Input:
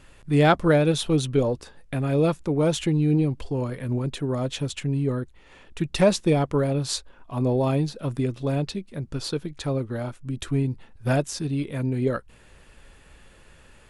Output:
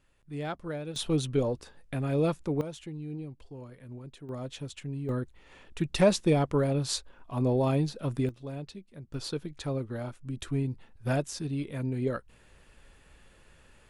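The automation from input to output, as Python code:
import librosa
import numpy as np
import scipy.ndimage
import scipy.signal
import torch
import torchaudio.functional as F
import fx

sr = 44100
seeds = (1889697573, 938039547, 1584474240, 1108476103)

y = fx.gain(x, sr, db=fx.steps((0.0, -17.5), (0.96, -5.5), (2.61, -17.5), (4.29, -11.0), (5.09, -3.5), (8.29, -13.5), (9.14, -6.0)))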